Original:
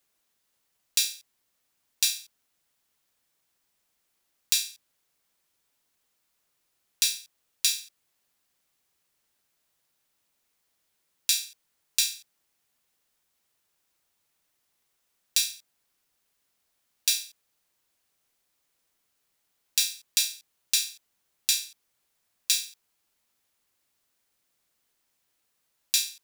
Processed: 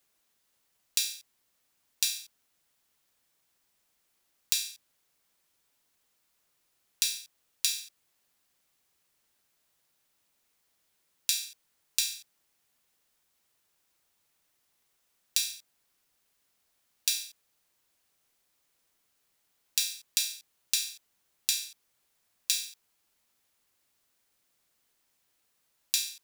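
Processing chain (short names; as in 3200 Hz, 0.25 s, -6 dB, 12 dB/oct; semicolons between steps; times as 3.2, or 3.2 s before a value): compressor 4:1, threshold -25 dBFS, peak gain reduction 6.5 dB; gain +1 dB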